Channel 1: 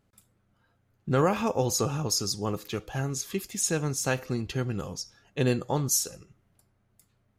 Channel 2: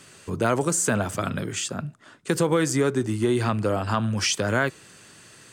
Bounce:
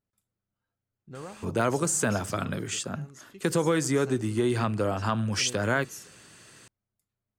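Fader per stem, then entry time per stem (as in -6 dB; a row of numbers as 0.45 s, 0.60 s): -18.0 dB, -3.0 dB; 0.00 s, 1.15 s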